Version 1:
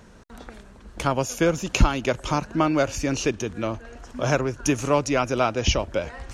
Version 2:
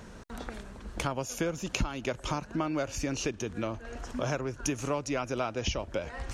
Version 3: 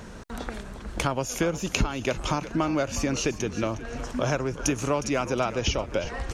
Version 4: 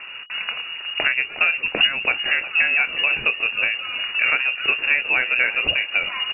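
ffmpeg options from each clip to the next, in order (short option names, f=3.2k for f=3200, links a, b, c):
-af "acompressor=threshold=-34dB:ratio=3,volume=2dB"
-filter_complex "[0:a]asplit=4[a][b][c][d];[b]adelay=361,afreqshift=-83,volume=-13.5dB[e];[c]adelay=722,afreqshift=-166,volume=-22.9dB[f];[d]adelay=1083,afreqshift=-249,volume=-32.2dB[g];[a][e][f][g]amix=inputs=4:normalize=0,volume=5.5dB"
-filter_complex "[0:a]asplit=2[a][b];[b]adelay=25,volume=-12.5dB[c];[a][c]amix=inputs=2:normalize=0,lowpass=f=2.5k:t=q:w=0.5098,lowpass=f=2.5k:t=q:w=0.6013,lowpass=f=2.5k:t=q:w=0.9,lowpass=f=2.5k:t=q:w=2.563,afreqshift=-2900,volume=6dB"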